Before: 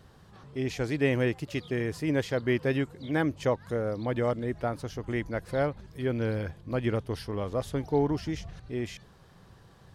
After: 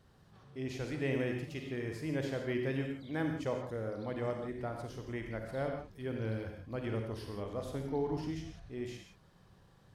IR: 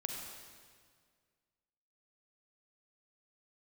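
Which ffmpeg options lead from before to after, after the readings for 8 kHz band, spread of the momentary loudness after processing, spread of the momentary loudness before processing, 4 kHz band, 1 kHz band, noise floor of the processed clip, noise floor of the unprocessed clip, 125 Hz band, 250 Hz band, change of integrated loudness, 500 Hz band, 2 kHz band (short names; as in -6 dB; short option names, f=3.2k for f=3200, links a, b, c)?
-8.0 dB, 8 LU, 8 LU, -8.0 dB, -8.0 dB, -63 dBFS, -56 dBFS, -7.5 dB, -7.5 dB, -7.5 dB, -8.0 dB, -8.0 dB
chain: -filter_complex "[1:a]atrim=start_sample=2205,afade=t=out:st=0.23:d=0.01,atrim=end_sample=10584[a];[0:a][a]afir=irnorm=-1:irlink=0,volume=-8dB"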